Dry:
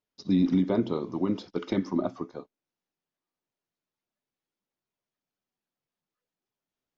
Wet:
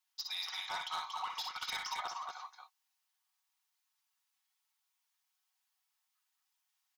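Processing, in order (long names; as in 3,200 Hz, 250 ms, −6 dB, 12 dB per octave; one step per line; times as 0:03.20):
Chebyshev high-pass filter 780 Hz, order 6
high-shelf EQ 3,700 Hz +9 dB
comb filter 5.4 ms, depth 54%
hard clipping −36 dBFS, distortion −12 dB
multi-tap delay 55/61/62/233 ms −16.5/−6.5/−17.5/−5 dB
level +1.5 dB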